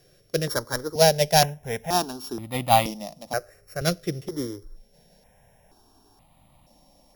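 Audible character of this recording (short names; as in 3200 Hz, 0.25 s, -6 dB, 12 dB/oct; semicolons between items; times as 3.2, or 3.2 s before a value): a buzz of ramps at a fixed pitch in blocks of 8 samples; notches that jump at a steady rate 2.1 Hz 240–1600 Hz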